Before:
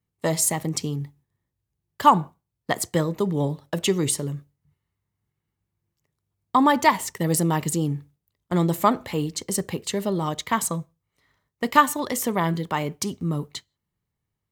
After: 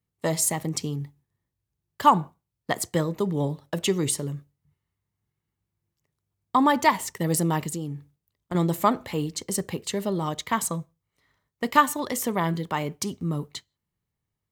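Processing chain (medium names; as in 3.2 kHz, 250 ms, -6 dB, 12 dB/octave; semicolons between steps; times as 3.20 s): 7.65–8.55 s: compression 4:1, threshold -27 dBFS, peak gain reduction 6.5 dB; trim -2 dB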